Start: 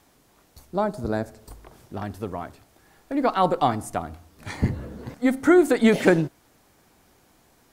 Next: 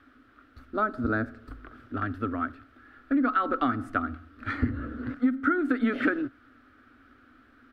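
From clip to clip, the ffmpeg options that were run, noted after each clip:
-af "firequalizer=gain_entry='entry(120,0);entry(160,-29);entry(250,12);entry(360,-3);entry(580,-5);entry(940,-13);entry(1300,14);entry(2100,-1);entry(3300,-4);entry(6600,-24)':delay=0.05:min_phase=1,acompressor=threshold=0.0891:ratio=12"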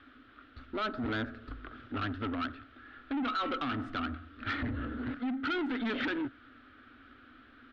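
-af "alimiter=limit=0.0891:level=0:latency=1:release=13,asoftclip=type=tanh:threshold=0.0316,lowpass=f=3500:t=q:w=2.3"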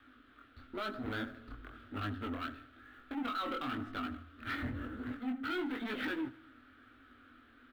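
-filter_complex "[0:a]acrossover=split=270|1700[s0][s1][s2];[s2]acrusher=bits=4:mode=log:mix=0:aa=0.000001[s3];[s0][s1][s3]amix=inputs=3:normalize=0,flanger=delay=19:depth=6.5:speed=1,aecho=1:1:78|156|234|312|390:0.1|0.057|0.0325|0.0185|0.0106,volume=0.841"

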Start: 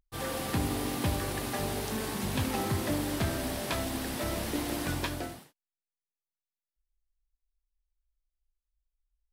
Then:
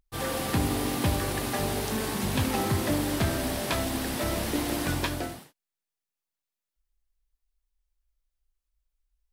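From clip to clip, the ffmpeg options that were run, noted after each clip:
-af "acontrast=50,volume=0.794"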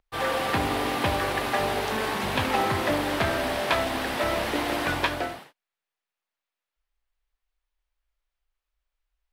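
-filter_complex "[0:a]acrossover=split=450 3700:gain=0.251 1 0.2[s0][s1][s2];[s0][s1][s2]amix=inputs=3:normalize=0,volume=2.37"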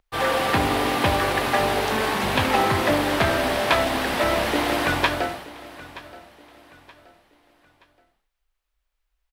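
-af "aecho=1:1:925|1850|2775:0.119|0.0416|0.0146,volume=1.68"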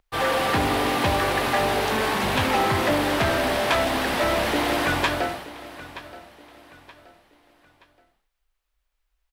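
-af "asoftclip=type=tanh:threshold=0.168,volume=1.12"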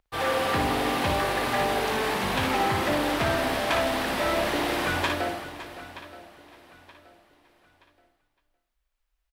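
-af "aecho=1:1:57|561:0.531|0.188,volume=0.596"

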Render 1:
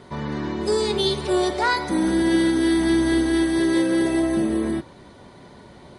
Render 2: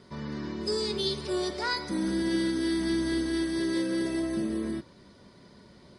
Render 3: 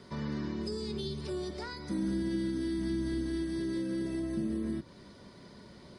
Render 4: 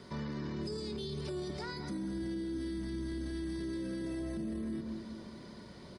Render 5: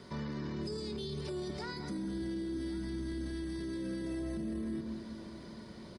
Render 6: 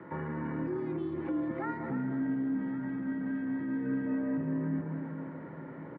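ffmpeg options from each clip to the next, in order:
-af "equalizer=f=200:t=o:w=0.33:g=5,equalizer=f=800:t=o:w=0.33:g=-9,equalizer=f=5000:t=o:w=0.33:g=11,volume=0.355"
-filter_complex "[0:a]acrossover=split=260[s0][s1];[s1]acompressor=threshold=0.00891:ratio=10[s2];[s0][s2]amix=inputs=2:normalize=0,volume=1.19"
-filter_complex "[0:a]asplit=2[s0][s1];[s1]adelay=212,lowpass=f=1100:p=1,volume=0.355,asplit=2[s2][s3];[s3]adelay=212,lowpass=f=1100:p=1,volume=0.55,asplit=2[s4][s5];[s5]adelay=212,lowpass=f=1100:p=1,volume=0.55,asplit=2[s6][s7];[s7]adelay=212,lowpass=f=1100:p=1,volume=0.55,asplit=2[s8][s9];[s9]adelay=212,lowpass=f=1100:p=1,volume=0.55,asplit=2[s10][s11];[s11]adelay=212,lowpass=f=1100:p=1,volume=0.55[s12];[s0][s2][s4][s6][s8][s10][s12]amix=inputs=7:normalize=0,alimiter=level_in=2.66:limit=0.0631:level=0:latency=1:release=12,volume=0.376,volume=1.12"
-af "aecho=1:1:1106:0.141"
-filter_complex "[0:a]asplit=2[s0][s1];[s1]adelay=300,highpass=300,lowpass=3400,asoftclip=type=hard:threshold=0.01,volume=0.447[s2];[s0][s2]amix=inputs=2:normalize=0,highpass=f=240:t=q:w=0.5412,highpass=f=240:t=q:w=1.307,lowpass=f=2100:t=q:w=0.5176,lowpass=f=2100:t=q:w=0.7071,lowpass=f=2100:t=q:w=1.932,afreqshift=-62,volume=2.24"

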